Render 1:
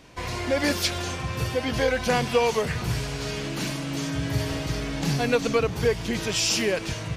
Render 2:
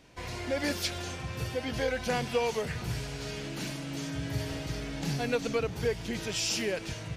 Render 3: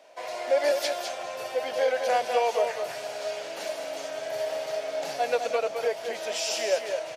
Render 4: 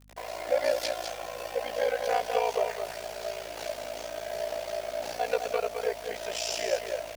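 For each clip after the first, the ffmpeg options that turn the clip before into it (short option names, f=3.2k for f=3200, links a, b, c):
-af "equalizer=f=1.1k:t=o:w=0.21:g=-5.5,volume=-7dB"
-af "highpass=f=620:t=q:w=6.7,aecho=1:1:207:0.473"
-af "aeval=exprs='val(0)*sin(2*PI*29*n/s)':c=same,acrusher=bits=7:mix=0:aa=0.000001,aeval=exprs='val(0)+0.00158*(sin(2*PI*50*n/s)+sin(2*PI*2*50*n/s)/2+sin(2*PI*3*50*n/s)/3+sin(2*PI*4*50*n/s)/4+sin(2*PI*5*50*n/s)/5)':c=same"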